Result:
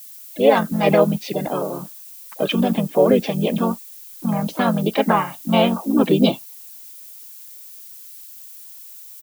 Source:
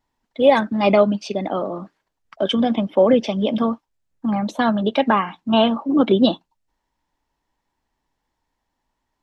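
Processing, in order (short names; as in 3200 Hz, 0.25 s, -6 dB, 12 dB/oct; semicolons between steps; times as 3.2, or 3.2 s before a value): harmoniser -4 st -3 dB, +4 st -15 dB; added noise violet -38 dBFS; gain -2 dB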